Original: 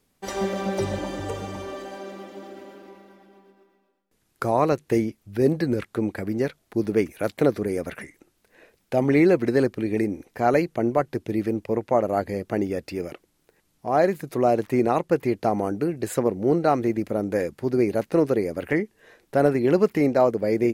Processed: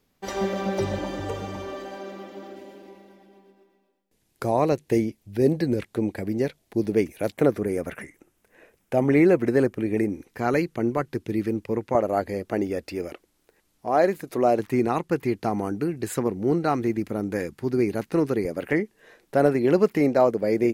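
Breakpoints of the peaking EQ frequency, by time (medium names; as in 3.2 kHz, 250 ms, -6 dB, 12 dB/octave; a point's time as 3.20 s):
peaking EQ -8 dB 0.64 oct
9.2 kHz
from 2.56 s 1.3 kHz
from 7.32 s 4.3 kHz
from 10.09 s 650 Hz
from 11.95 s 140 Hz
from 14.59 s 580 Hz
from 18.45 s 81 Hz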